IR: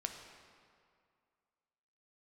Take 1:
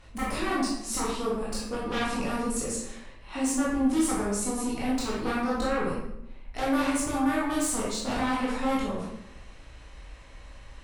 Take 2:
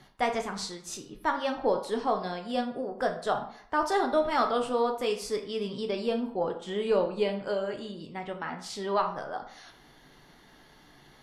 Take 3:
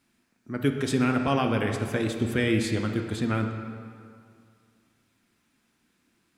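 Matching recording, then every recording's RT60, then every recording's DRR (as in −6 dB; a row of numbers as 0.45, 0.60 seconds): 3; 0.85, 0.60, 2.2 seconds; −7.0, 3.5, 3.5 decibels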